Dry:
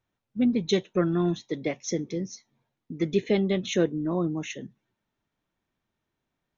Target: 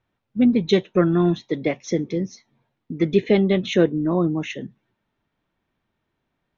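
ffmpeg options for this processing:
-af "lowpass=3.8k,volume=6.5dB"

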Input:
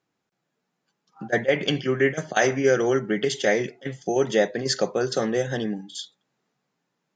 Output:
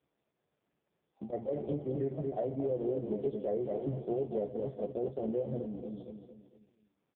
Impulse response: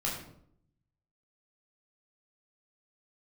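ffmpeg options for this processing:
-filter_complex "[0:a]asettb=1/sr,asplit=3[a][b][c];[a]atrim=end=3.724[d];[b]atrim=start=3.72:end=4.13,asetpts=PTS-STARTPTS,afade=t=in:d=0.004:c=qsin,afade=t=out:st=0.406:d=0.004:c=qsin,aeval=exprs='val(0)+0.5*0.0422*sgn(val(0))':c=same[e];[c]atrim=start=4.126[f];[d][e]acrossfade=d=0.004:c1=hsin:c2=qsin[g];[g][f]acrossfade=d=0.004:c1=qsin:c2=hsin,equalizer=f=980:w=1.1:g=-12.5,asplit=2[h][i];[i]adelay=14,volume=-7dB[j];[h][j]amix=inputs=2:normalize=0,asplit=2[k][l];[l]adelay=227,lowpass=f=2.6k:p=1,volume=-7.5dB,asplit=2[m][n];[n]adelay=227,lowpass=f=2.6k:p=1,volume=0.43,asplit=2[o][p];[p]adelay=227,lowpass=f=2.6k:p=1,volume=0.43,asplit=2[q][r];[r]adelay=227,lowpass=f=2.6k:p=1,volume=0.43,asplit=2[s][t];[t]adelay=227,lowpass=f=2.6k:p=1,volume=0.43[u];[k][m][o][q][s][u]amix=inputs=6:normalize=0,asettb=1/sr,asplit=3[v][w][x];[v]atrim=end=1.354[y];[w]atrim=start=1.35:end=1.98,asetpts=PTS-STARTPTS,afade=t=in:d=0.004:c=qsin,afade=t=out:st=0.626:d=0.004:c=qsin,aeval=exprs='val(0)+0.00562*sin(2*PI*800*n/s)':c=same[z];[x]atrim=start=1.976[aa];[y][z]acrossfade=d=0.004:c1=hsin:c2=qsin[ab];[ab][aa]acrossfade=d=0.004:c1=qsin:c2=hsin,aeval=exprs='(tanh(6.31*val(0)+0.25)-tanh(0.25))/6.31':c=same,firequalizer=gain_entry='entry(260,0);entry(680,10);entry(1100,-22)':delay=0.05:min_phase=1,asettb=1/sr,asplit=3[ac][ad][ae];[ac]atrim=end=5.584[af];[ad]atrim=start=5.58:end=5.98,asetpts=PTS-STARTPTS,afade=t=in:d=0.004:c=qsin,afade=t=out:st=0.396:d=0.004:c=qsin,acompressor=threshold=-27dB:ratio=16[ag];[ae]atrim=start=5.976[ah];[af][ag]acrossfade=d=0.004:c1=hsin:c2=qsin[ai];[ai][ah]acrossfade=d=0.004:c1=qsin:c2=hsin,alimiter=limit=-17.5dB:level=0:latency=1:release=222,volume=-6.5dB" -ar 8000 -c:a libopencore_amrnb -b:a 4750

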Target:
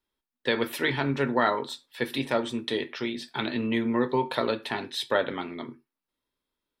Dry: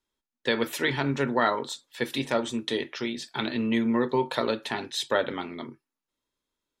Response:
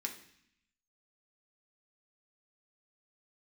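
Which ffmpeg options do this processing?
-filter_complex "[0:a]equalizer=f=6.8k:w=2.5:g=-10.5,asplit=2[a][b];[1:a]atrim=start_sample=2205,atrim=end_sample=4410,adelay=12[c];[b][c]afir=irnorm=-1:irlink=0,volume=-13dB[d];[a][d]amix=inputs=2:normalize=0"

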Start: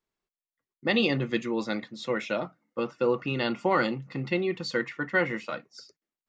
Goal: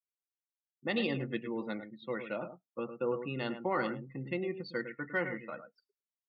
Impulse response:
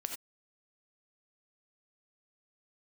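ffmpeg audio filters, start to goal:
-filter_complex "[0:a]asplit=2[a][b];[b]adelay=105,volume=-9dB,highshelf=f=4k:g=-2.36[c];[a][c]amix=inputs=2:normalize=0,adynamicsmooth=sensitivity=2:basefreq=3.9k,afftdn=nr=32:nf=-41,volume=-8dB"

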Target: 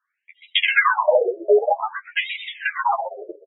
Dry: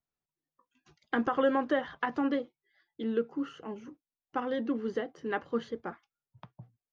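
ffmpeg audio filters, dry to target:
-filter_complex "[0:a]afftfilt=real='re':imag='-im':win_size=2048:overlap=0.75,acrossover=split=450[a][b];[b]adynamicsmooth=sensitivity=3:basefreq=3k[c];[a][c]amix=inputs=2:normalize=0,asetrate=88200,aresample=44100,aeval=exprs='0.0944*(cos(1*acos(clip(val(0)/0.0944,-1,1)))-cos(1*PI/2))+0.00944*(cos(4*acos(clip(val(0)/0.0944,-1,1)))-cos(4*PI/2))':c=same,lowshelf=f=67:g=11.5,aecho=1:1:1.8:0.41,adynamicequalizer=threshold=0.00316:dfrequency=320:dqfactor=2:tfrequency=320:tqfactor=2:attack=5:release=100:ratio=0.375:range=2:mode=cutabove:tftype=bell,acompressor=threshold=-44dB:ratio=2,asplit=2[d][e];[e]asplit=4[f][g][h][i];[f]adelay=127,afreqshift=-140,volume=-6dB[j];[g]adelay=254,afreqshift=-280,volume=-15.6dB[k];[h]adelay=381,afreqshift=-420,volume=-25.3dB[l];[i]adelay=508,afreqshift=-560,volume=-34.9dB[m];[j][k][l][m]amix=inputs=4:normalize=0[n];[d][n]amix=inputs=2:normalize=0,alimiter=level_in=29.5dB:limit=-1dB:release=50:level=0:latency=1,afftfilt=real='re*between(b*sr/1024,480*pow(2800/480,0.5+0.5*sin(2*PI*0.52*pts/sr))/1.41,480*pow(2800/480,0.5+0.5*sin(2*PI*0.52*pts/sr))*1.41)':imag='im*between(b*sr/1024,480*pow(2800/480,0.5+0.5*sin(2*PI*0.52*pts/sr))/1.41,480*pow(2800/480,0.5+0.5*sin(2*PI*0.52*pts/sr))*1.41)':win_size=1024:overlap=0.75"

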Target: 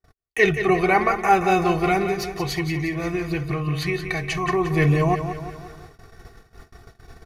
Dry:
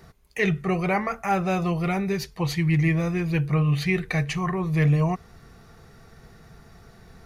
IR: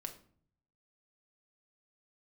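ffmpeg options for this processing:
-filter_complex "[0:a]aecho=1:1:2.7:0.59,asettb=1/sr,asplit=3[a][b][c];[a]atrim=end=2.074[d];[b]atrim=start=2.07:end=4.48,asetpts=PTS-STARTPTS,afade=t=in:d=0.004:c=qsin,afade=t=out:st=2.406:d=0.004:c=qsin,acompressor=threshold=-27dB:ratio=6[e];[c]atrim=start=4.476[f];[d][e]acrossfade=d=0.004:c1=hsin:c2=qsin[g];[g][f]acrossfade=d=0.004:c1=qsin:c2=hsin,aecho=1:1:176|352|528|704|880|1056:0.355|0.185|0.0959|0.0499|0.0259|0.0135,agate=range=-43dB:threshold=-45dB:ratio=16:detection=peak,volume=4.5dB"

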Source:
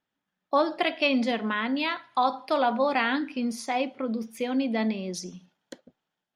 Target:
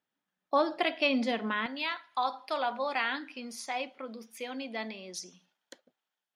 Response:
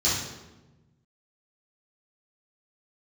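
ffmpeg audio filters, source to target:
-af "asetnsamples=n=441:p=0,asendcmd='1.66 highpass f 940',highpass=f=160:p=1,volume=-3dB"

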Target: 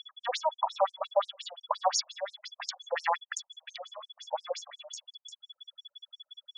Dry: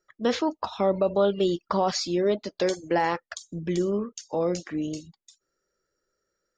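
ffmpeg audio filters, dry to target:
-af "aeval=exprs='if(lt(val(0),0),0.708*val(0),val(0))':c=same,aeval=exprs='val(0)+0.00631*sin(2*PI*3400*n/s)':c=same,afftfilt=real='re*between(b*sr/1024,710*pow(7700/710,0.5+0.5*sin(2*PI*5.7*pts/sr))/1.41,710*pow(7700/710,0.5+0.5*sin(2*PI*5.7*pts/sr))*1.41)':imag='im*between(b*sr/1024,710*pow(7700/710,0.5+0.5*sin(2*PI*5.7*pts/sr))/1.41,710*pow(7700/710,0.5+0.5*sin(2*PI*5.7*pts/sr))*1.41)':win_size=1024:overlap=0.75,volume=4.5dB"

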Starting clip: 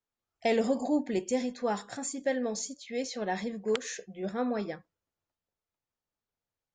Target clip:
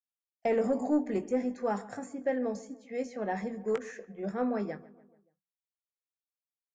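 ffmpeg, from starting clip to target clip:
-filter_complex "[0:a]agate=range=-33dB:threshold=-43dB:ratio=3:detection=peak,equalizer=f=3.7k:w=1.7:g=-13.5,bandreject=f=60:t=h:w=6,bandreject=f=120:t=h:w=6,bandreject=f=180:t=h:w=6,bandreject=f=240:t=h:w=6,acrossover=split=260|2600[a][b][c];[c]acompressor=threshold=-56dB:ratio=6[d];[a][b][d]amix=inputs=3:normalize=0,asoftclip=type=tanh:threshold=-17.5dB,asplit=2[e][f];[f]adelay=20,volume=-11dB[g];[e][g]amix=inputs=2:normalize=0,asplit=2[h][i];[i]adelay=144,lowpass=f=2.1k:p=1,volume=-19dB,asplit=2[j][k];[k]adelay=144,lowpass=f=2.1k:p=1,volume=0.54,asplit=2[l][m];[m]adelay=144,lowpass=f=2.1k:p=1,volume=0.54,asplit=2[n][o];[o]adelay=144,lowpass=f=2.1k:p=1,volume=0.54[p];[j][l][n][p]amix=inputs=4:normalize=0[q];[h][q]amix=inputs=2:normalize=0"

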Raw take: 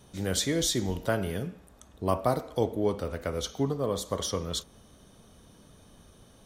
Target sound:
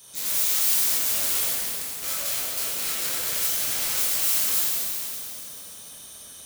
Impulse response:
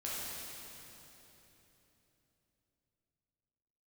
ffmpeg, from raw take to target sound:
-filter_complex "[0:a]highpass=f=55:p=1,lowshelf=f=280:g=-8.5,bandreject=f=50:t=h:w=6,bandreject=f=100:t=h:w=6,bandreject=f=150:t=h:w=6,bandreject=f=200:t=h:w=6,bandreject=f=250:t=h:w=6,bandreject=f=300:t=h:w=6,bandreject=f=350:t=h:w=6,acompressor=threshold=-33dB:ratio=16,aeval=exprs='(mod(75*val(0)+1,2)-1)/75':c=same,crystalizer=i=9.5:c=0[a];[1:a]atrim=start_sample=2205[b];[a][b]afir=irnorm=-1:irlink=0,volume=-1.5dB"

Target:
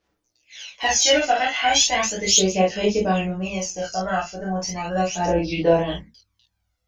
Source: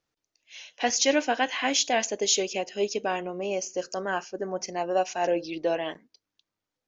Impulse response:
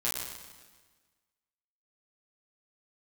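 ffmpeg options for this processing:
-filter_complex "[1:a]atrim=start_sample=2205,atrim=end_sample=3969[a];[0:a][a]afir=irnorm=-1:irlink=0,aphaser=in_gain=1:out_gain=1:delay=1.5:decay=0.61:speed=0.36:type=sinusoidal,asubboost=boost=9:cutoff=110"

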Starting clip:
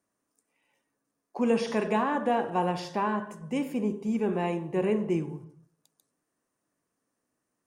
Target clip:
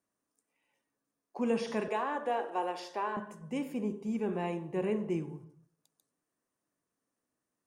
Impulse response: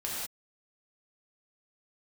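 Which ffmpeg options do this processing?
-filter_complex "[0:a]asettb=1/sr,asplit=3[a][b][c];[a]atrim=end=1.884[d];[b]atrim=start=1.88:end=3.17,asetpts=PTS-STARTPTS,afade=t=in:d=0.004:c=qsin,afade=t=out:st=1.286:d=0.004:c=qsin,highpass=f=320:w=0.5412,highpass=f=320:w=1.3066[e];[c]atrim=start=3.166[f];[d][e]acrossfade=d=0.004:c1=hsin:c2=qsin[g];[g][f]acrossfade=d=0.004:c1=qsin:c2=hsin,volume=-5.5dB"

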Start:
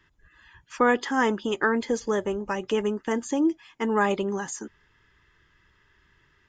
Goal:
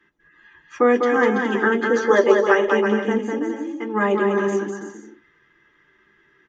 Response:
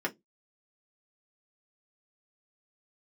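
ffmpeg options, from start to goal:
-filter_complex "[0:a]asplit=3[a][b][c];[a]afade=t=out:st=1.94:d=0.02[d];[b]equalizer=f=250:t=o:w=1:g=-10,equalizer=f=500:t=o:w=1:g=11,equalizer=f=1k:t=o:w=1:g=7,equalizer=f=2k:t=o:w=1:g=7,equalizer=f=4k:t=o:w=1:g=11,afade=t=in:st=1.94:d=0.02,afade=t=out:st=2.66:d=0.02[e];[c]afade=t=in:st=2.66:d=0.02[f];[d][e][f]amix=inputs=3:normalize=0,asplit=3[g][h][i];[g]afade=t=out:st=3.22:d=0.02[j];[h]acompressor=threshold=-37dB:ratio=2,afade=t=in:st=3.22:d=0.02,afade=t=out:st=3.93:d=0.02[k];[i]afade=t=in:st=3.93:d=0.02[l];[j][k][l]amix=inputs=3:normalize=0,aecho=1:1:200|330|414.5|469.4|505.1:0.631|0.398|0.251|0.158|0.1[m];[1:a]atrim=start_sample=2205,asetrate=48510,aresample=44100[n];[m][n]afir=irnorm=-1:irlink=0,volume=-4dB"

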